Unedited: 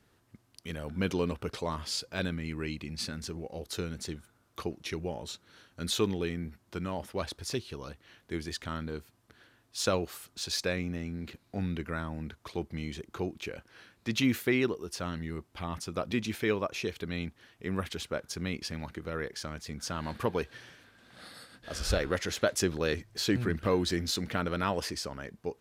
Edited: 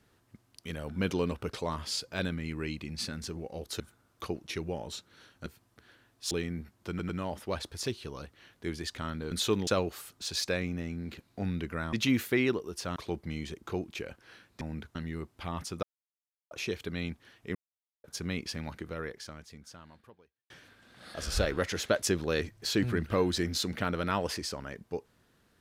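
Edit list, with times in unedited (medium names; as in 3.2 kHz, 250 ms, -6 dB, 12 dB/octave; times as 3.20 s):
3.80–4.16 s: delete
5.82–6.18 s: swap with 8.98–9.83 s
6.76 s: stutter 0.10 s, 3 plays
12.09–12.43 s: swap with 14.08–15.11 s
15.99–16.67 s: mute
17.71–18.20 s: mute
18.94–20.66 s: fade out quadratic
21.30–21.67 s: delete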